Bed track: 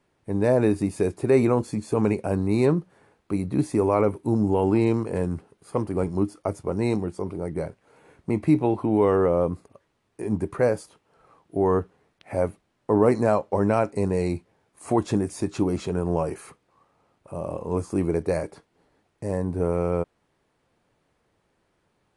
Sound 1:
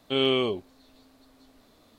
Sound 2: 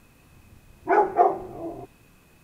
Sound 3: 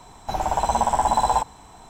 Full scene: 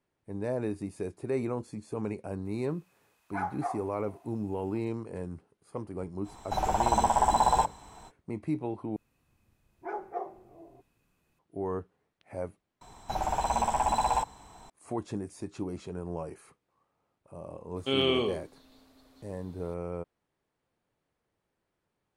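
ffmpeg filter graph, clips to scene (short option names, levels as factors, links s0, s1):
-filter_complex "[2:a]asplit=2[s0][s1];[3:a]asplit=2[s2][s3];[0:a]volume=0.251[s4];[s0]highpass=f=800:w=0.5412,highpass=f=800:w=1.3066[s5];[s3]asoftclip=type=tanh:threshold=0.251[s6];[1:a]aecho=1:1:81:0.376[s7];[s4]asplit=3[s8][s9][s10];[s8]atrim=end=8.964[s11];[s1]atrim=end=2.43,asetpts=PTS-STARTPTS,volume=0.133[s12];[s9]atrim=start=11.386:end=12.814[s13];[s6]atrim=end=1.89,asetpts=PTS-STARTPTS,volume=0.531[s14];[s10]atrim=start=14.696[s15];[s5]atrim=end=2.43,asetpts=PTS-STARTPTS,volume=0.316,afade=t=in:d=0.004:c=hsin,afade=t=out:st=2.426:d=0.004:c=hsin,adelay=2450[s16];[s2]atrim=end=1.89,asetpts=PTS-STARTPTS,volume=0.631,afade=t=in:d=0.05,afade=t=out:st=1.84:d=0.05,adelay=6230[s17];[s7]atrim=end=1.98,asetpts=PTS-STARTPTS,volume=0.708,afade=t=in:d=0.004:c=hsin,afade=t=out:st=1.976:d=0.004:c=hsin,adelay=17760[s18];[s11][s12]acrossfade=d=0.004:c1=hsin:c2=hsin[s19];[s19][s13]acrossfade=d=0.004:c1=hsin:c2=hsin[s20];[s20][s14]acrossfade=d=0.004:c1=hsin:c2=hsin[s21];[s21][s15]acrossfade=d=0.004:c1=hsin:c2=hsin[s22];[s22][s16][s17][s18]amix=inputs=4:normalize=0"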